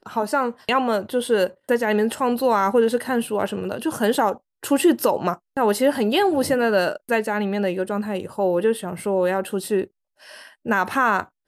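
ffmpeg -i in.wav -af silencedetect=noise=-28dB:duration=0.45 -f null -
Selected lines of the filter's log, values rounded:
silence_start: 9.84
silence_end: 10.66 | silence_duration: 0.82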